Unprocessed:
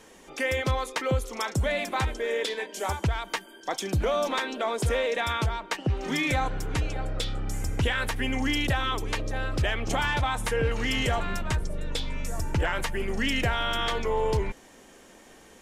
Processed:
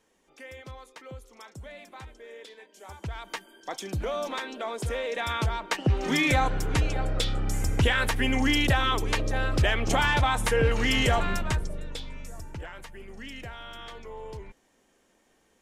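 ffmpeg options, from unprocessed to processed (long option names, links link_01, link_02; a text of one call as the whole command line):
ffmpeg -i in.wav -af "volume=3dB,afade=type=in:start_time=2.86:duration=0.46:silence=0.251189,afade=type=in:start_time=5.03:duration=0.86:silence=0.398107,afade=type=out:start_time=11.25:duration=0.66:silence=0.354813,afade=type=out:start_time=11.91:duration=0.79:silence=0.375837" out.wav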